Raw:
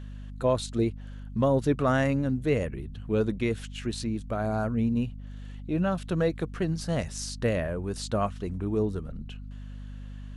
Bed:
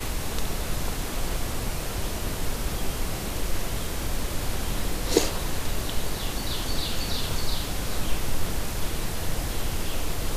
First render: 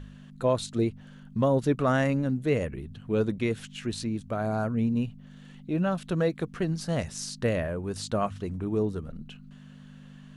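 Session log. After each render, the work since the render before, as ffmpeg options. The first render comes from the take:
-af "bandreject=f=50:t=h:w=4,bandreject=f=100:t=h:w=4"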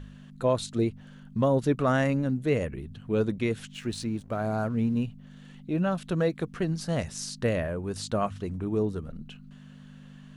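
-filter_complex "[0:a]asettb=1/sr,asplit=3[a][b][c];[a]atrim=end=3.744[d];[b]atrim=start=3.74:end=5.04,asetpts=PTS-STARTPTS,afade=t=in:d=0.004:c=qsin,afade=t=out:st=1.296:d=0.004:c=qsin,aeval=exprs='sgn(val(0))*max(abs(val(0))-0.0015,0)':c=same[e];[c]atrim=start=5.036[f];[d][e]acrossfade=d=0.004:c1=hsin:c2=qsin[g];[g][f]acrossfade=d=0.004:c1=qsin:c2=hsin"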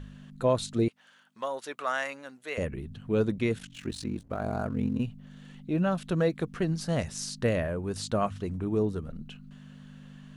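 -filter_complex "[0:a]asettb=1/sr,asplit=3[a][b][c];[a]atrim=end=0.884[d];[b]atrim=start=0.88:end=2.58,asetpts=PTS-STARTPTS,afade=t=in:d=0.004:c=qsin,afade=t=out:st=1.696:d=0.004:c=qsin,highpass=920[e];[c]atrim=start=2.576[f];[d][e]acrossfade=d=0.004:c1=hsin:c2=qsin[g];[g][f]acrossfade=d=0.004:c1=qsin:c2=hsin,asplit=3[h][i][j];[h]afade=t=out:st=3.58:d=0.02[k];[i]aeval=exprs='val(0)*sin(2*PI*23*n/s)':c=same,afade=t=in:st=3.58:d=0.02,afade=t=out:st=4.98:d=0.02[l];[j]afade=t=in:st=4.98:d=0.02[m];[k][l][m]amix=inputs=3:normalize=0"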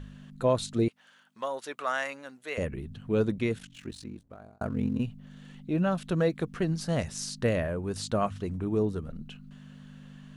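-filter_complex "[0:a]asplit=2[a][b];[a]atrim=end=4.61,asetpts=PTS-STARTPTS,afade=t=out:st=3.32:d=1.29[c];[b]atrim=start=4.61,asetpts=PTS-STARTPTS,afade=t=in:d=0.004:c=hsin[d];[c][d]concat=n=2:v=0:a=1"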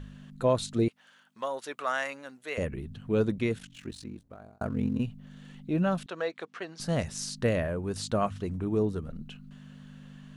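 -filter_complex "[0:a]asettb=1/sr,asplit=3[a][b][c];[a]atrim=end=6.064[d];[b]atrim=start=6.06:end=6.8,asetpts=PTS-STARTPTS,afade=t=in:d=0.004:c=qsin,afade=t=out:st=0.736:d=0.004:c=qsin,highpass=620,lowpass=5.5k[e];[c]atrim=start=6.796[f];[d][e]acrossfade=d=0.004:c1=hsin:c2=qsin[g];[g][f]acrossfade=d=0.004:c1=qsin:c2=hsin"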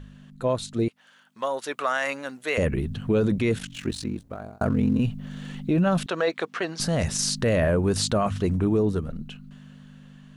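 -af "dynaudnorm=f=260:g=13:m=12.5dB,alimiter=limit=-14.5dB:level=0:latency=1:release=18"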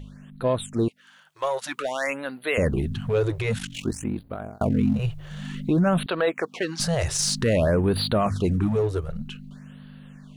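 -filter_complex "[0:a]asplit=2[a][b];[b]asoftclip=type=hard:threshold=-28.5dB,volume=-8dB[c];[a][c]amix=inputs=2:normalize=0,afftfilt=real='re*(1-between(b*sr/1024,210*pow(6900/210,0.5+0.5*sin(2*PI*0.53*pts/sr))/1.41,210*pow(6900/210,0.5+0.5*sin(2*PI*0.53*pts/sr))*1.41))':imag='im*(1-between(b*sr/1024,210*pow(6900/210,0.5+0.5*sin(2*PI*0.53*pts/sr))/1.41,210*pow(6900/210,0.5+0.5*sin(2*PI*0.53*pts/sr))*1.41))':win_size=1024:overlap=0.75"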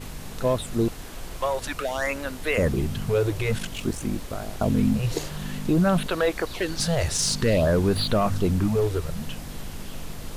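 -filter_complex "[1:a]volume=-8.5dB[a];[0:a][a]amix=inputs=2:normalize=0"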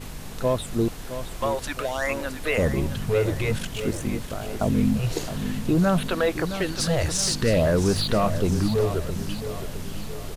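-af "aecho=1:1:666|1332|1998|2664|3330:0.282|0.138|0.0677|0.0332|0.0162"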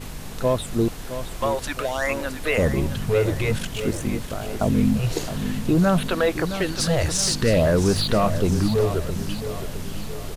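-af "volume=2dB"

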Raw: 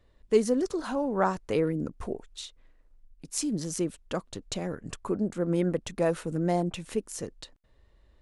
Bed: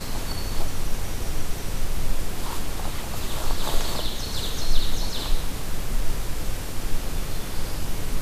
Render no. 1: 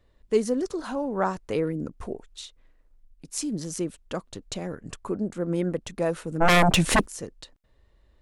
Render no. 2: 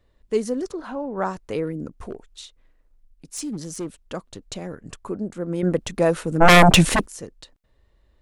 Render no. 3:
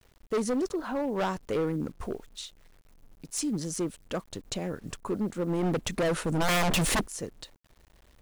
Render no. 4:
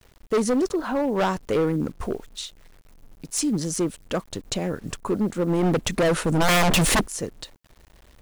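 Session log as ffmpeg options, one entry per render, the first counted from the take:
-filter_complex "[0:a]asplit=3[a][b][c];[a]afade=t=out:st=6.4:d=0.02[d];[b]aeval=exprs='0.2*sin(PI/2*6.31*val(0)/0.2)':c=same,afade=t=in:st=6.4:d=0.02,afade=t=out:st=7.05:d=0.02[e];[c]afade=t=in:st=7.05:d=0.02[f];[d][e][f]amix=inputs=3:normalize=0"
-filter_complex "[0:a]asettb=1/sr,asplit=3[a][b][c];[a]atrim=end=0.724[d];[b]atrim=start=0.72:end=1.18,asetpts=PTS-STARTPTS,afade=t=in:d=0.004:c=qsin,afade=t=out:st=0.456:d=0.004:c=qsin,bass=f=250:g=-2,treble=f=4k:g=-14[e];[c]atrim=start=1.176[f];[d][e]acrossfade=d=0.004:c1=hsin:c2=qsin[g];[g][f]acrossfade=d=0.004:c1=qsin:c2=hsin,asplit=3[h][i][j];[h]afade=t=out:st=2.08:d=0.02[k];[i]asoftclip=type=hard:threshold=-25dB,afade=t=in:st=2.08:d=0.02,afade=t=out:st=3.99:d=0.02[l];[j]afade=t=in:st=3.99:d=0.02[m];[k][l][m]amix=inputs=3:normalize=0,asplit=3[n][o][p];[n]atrim=end=5.632[q];[o]atrim=start=5.628:end=6.892,asetpts=PTS-STARTPTS,volume=7dB[r];[p]atrim=start=6.888[s];[q][r]acrossfade=d=0.004:c1=hsin:c2=hsin[t];[t][s]acrossfade=d=0.004:c1=hsin:c2=hsin"
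-af "acrusher=bits=9:mix=0:aa=0.000001,asoftclip=type=hard:threshold=-24dB"
-af "volume=6.5dB"

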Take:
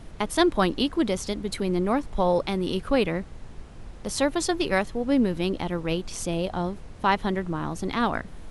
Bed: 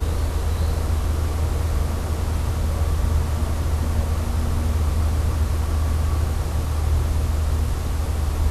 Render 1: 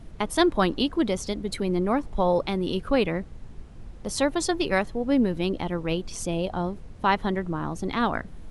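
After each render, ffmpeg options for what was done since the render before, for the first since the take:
-af "afftdn=nr=6:nf=-43"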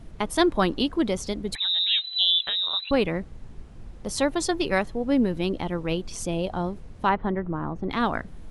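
-filter_complex "[0:a]asettb=1/sr,asplit=3[a][b][c];[a]atrim=end=1.554[d];[b]atrim=start=1.55:end=2.91,asetpts=PTS-STARTPTS,afade=t=in:d=0.004:c=qsin,afade=t=out:st=1.356:d=0.004:c=qsin,lowpass=f=3.4k:t=q:w=0.5098,lowpass=f=3.4k:t=q:w=0.6013,lowpass=f=3.4k:t=q:w=0.9,lowpass=f=3.4k:t=q:w=2.563,afreqshift=-4000[e];[c]atrim=start=2.906[f];[d][e]acrossfade=d=0.004:c1=hsin:c2=qsin[g];[g][f]acrossfade=d=0.004:c1=qsin:c2=hsin,asettb=1/sr,asplit=3[h][i][j];[h]atrim=end=7.094[k];[i]atrim=start=7.09:end=7.91,asetpts=PTS-STARTPTS,afade=t=in:d=0.004:c=qsin,afade=t=out:st=0.816:d=0.004:c=qsin,lowpass=1.7k[l];[j]atrim=start=7.906[m];[k][l]acrossfade=d=0.004:c1=hsin:c2=qsin[n];[n][m]acrossfade=d=0.004:c1=qsin:c2=hsin"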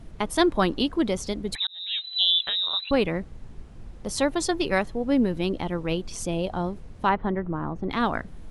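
-filter_complex "[0:a]asplit=2[a][b];[a]atrim=end=1.67,asetpts=PTS-STARTPTS,afade=t=out:st=1.666:d=0.004:c=hsin[c];[b]atrim=start=1.67,asetpts=PTS-STARTPTS,afade=t=in:d=0.55[d];[c][d]concat=n=2:v=0:a=1"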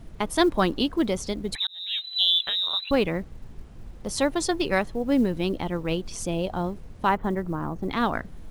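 -af "acrusher=bits=9:mode=log:mix=0:aa=0.000001"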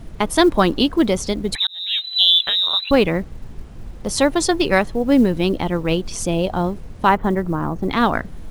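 -af "volume=7.5dB,alimiter=limit=-3dB:level=0:latency=1"

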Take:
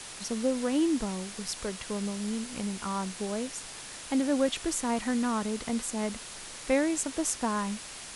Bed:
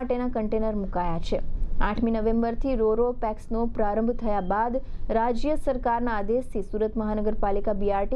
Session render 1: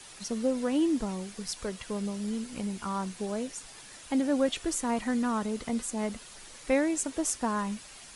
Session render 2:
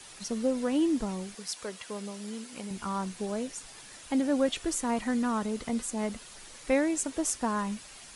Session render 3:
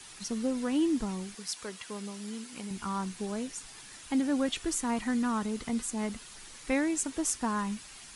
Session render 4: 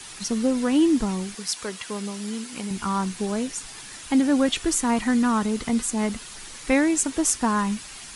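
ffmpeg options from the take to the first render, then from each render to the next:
-af "afftdn=nr=8:nf=-43"
-filter_complex "[0:a]asettb=1/sr,asplit=3[a][b][c];[a]atrim=end=1.354[d];[b]atrim=start=1.35:end=2.71,asetpts=PTS-STARTPTS,afade=t=in:d=0.004:c=qsin,afade=t=out:st=1.356:d=0.004:c=qsin,highpass=f=410:p=1[e];[c]atrim=start=2.706[f];[d][e]acrossfade=d=0.004:c1=hsin:c2=qsin[g];[g][f]acrossfade=d=0.004:c1=qsin:c2=hsin"
-af "equalizer=f=570:w=2:g=-7"
-af "volume=8.5dB"

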